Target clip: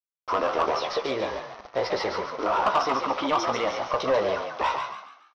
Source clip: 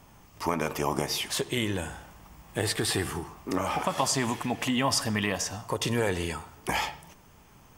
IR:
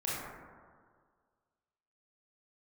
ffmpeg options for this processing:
-filter_complex "[0:a]atempo=1.3,highshelf=frequency=3000:gain=-2.5,asplit=2[link_01][link_02];[link_02]adelay=17,volume=-7.5dB[link_03];[link_01][link_03]amix=inputs=2:normalize=0,aresample=11025,acrusher=bits=6:mix=0:aa=0.000001,aresample=44100,equalizer=frequency=125:width_type=o:width=1:gain=-12,equalizer=frequency=500:width_type=o:width=1:gain=11,equalizer=frequency=1000:width_type=o:width=1:gain=10,asoftclip=type=tanh:threshold=-13dB,asplit=2[link_04][link_05];[link_05]asplit=4[link_06][link_07][link_08][link_09];[link_06]adelay=158,afreqshift=59,volume=-6dB[link_10];[link_07]adelay=316,afreqshift=118,volume=-14.6dB[link_11];[link_08]adelay=474,afreqshift=177,volume=-23.3dB[link_12];[link_09]adelay=632,afreqshift=236,volume=-31.9dB[link_13];[link_10][link_11][link_12][link_13]amix=inputs=4:normalize=0[link_14];[link_04][link_14]amix=inputs=2:normalize=0,asetrate=49392,aresample=44100,volume=-3dB"

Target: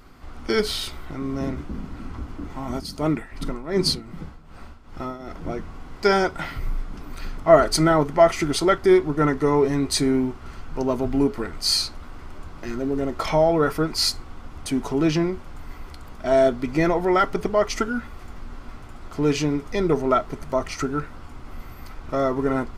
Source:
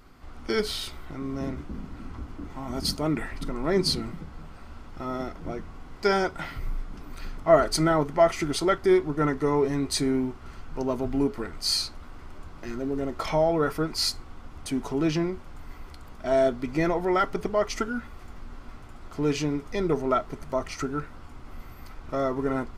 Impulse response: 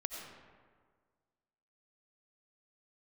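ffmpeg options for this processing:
-filter_complex "[0:a]asplit=3[link_01][link_02][link_03];[link_01]afade=type=out:start_time=2.76:duration=0.02[link_04];[link_02]tremolo=f=2.6:d=0.76,afade=type=in:start_time=2.76:duration=0.02,afade=type=out:start_time=5.29:duration=0.02[link_05];[link_03]afade=type=in:start_time=5.29:duration=0.02[link_06];[link_04][link_05][link_06]amix=inputs=3:normalize=0,volume=4.5dB"

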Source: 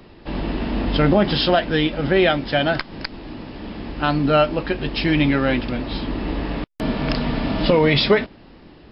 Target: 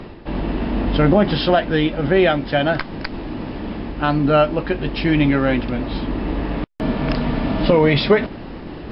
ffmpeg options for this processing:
ffmpeg -i in.wav -af "lowpass=frequency=2300:poles=1,areverse,acompressor=mode=upward:threshold=-22dB:ratio=2.5,areverse,volume=2dB" out.wav

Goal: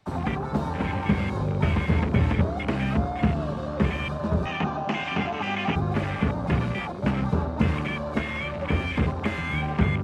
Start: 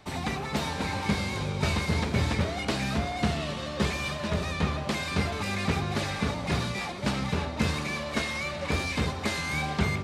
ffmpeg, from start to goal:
ffmpeg -i in.wav -filter_complex "[0:a]afwtdn=0.0224,acrossover=split=340[link_01][link_02];[link_02]acompressor=threshold=-35dB:ratio=3[link_03];[link_01][link_03]amix=inputs=2:normalize=0,asettb=1/sr,asplit=3[link_04][link_05][link_06];[link_04]atrim=end=4.464[link_07];[link_05]atrim=start=4.46:end=5.76,asetpts=PTS-STARTPTS,afade=type=in:duration=0.004:curve=qsin,afade=type=out:start_time=1.296:duration=0.004:curve=qsin,highpass=190,equalizer=frequency=510:width_type=q:width=4:gain=-7,equalizer=frequency=770:width_type=q:width=4:gain=9,equalizer=frequency=2800:width_type=q:width=4:gain=8,equalizer=frequency=6100:width_type=q:width=4:gain=6,lowpass=frequency=7300:width=0.5412,lowpass=frequency=7300:width=1.3066[link_08];[link_06]atrim=start=5.756[link_09];[link_07][link_08]acrossfade=duration=0.004:curve1=hsin:curve2=qsin[link_10];[link_10][link_09]acrossfade=duration=0.004:curve1=qsin:curve2=hsin,volume=5.5dB" out.wav

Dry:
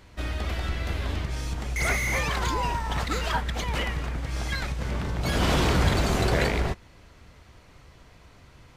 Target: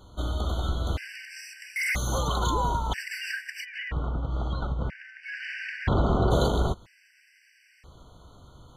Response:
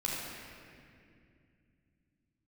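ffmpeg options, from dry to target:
-filter_complex "[0:a]asplit=3[link_01][link_02][link_03];[link_01]afade=type=out:start_time=3.64:duration=0.02[link_04];[link_02]lowpass=2000,afade=type=in:start_time=3.64:duration=0.02,afade=type=out:start_time=6.3:duration=0.02[link_05];[link_03]afade=type=in:start_time=6.3:duration=0.02[link_06];[link_04][link_05][link_06]amix=inputs=3:normalize=0,afftfilt=real='re*gt(sin(2*PI*0.51*pts/sr)*(1-2*mod(floor(b*sr/1024/1500),2)),0)':imag='im*gt(sin(2*PI*0.51*pts/sr)*(1-2*mod(floor(b*sr/1024/1500),2)),0)':win_size=1024:overlap=0.75,volume=1.5dB"

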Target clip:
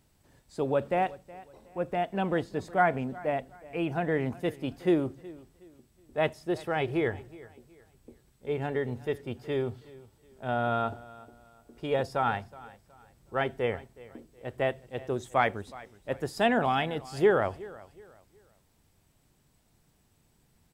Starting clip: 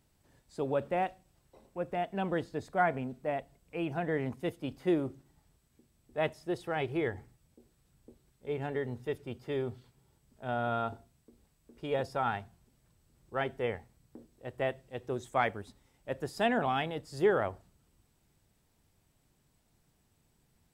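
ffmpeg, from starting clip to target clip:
ffmpeg -i in.wav -af "aecho=1:1:369|738|1107:0.1|0.032|0.0102,volume=4dB" out.wav

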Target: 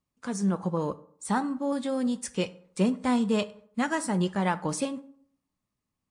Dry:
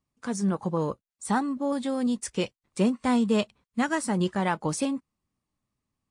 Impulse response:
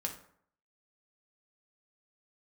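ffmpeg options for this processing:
-filter_complex "[0:a]asplit=2[link_01][link_02];[1:a]atrim=start_sample=2205,lowshelf=frequency=140:gain=-7[link_03];[link_02][link_03]afir=irnorm=-1:irlink=0,volume=-6dB[link_04];[link_01][link_04]amix=inputs=2:normalize=0,volume=-4.5dB"

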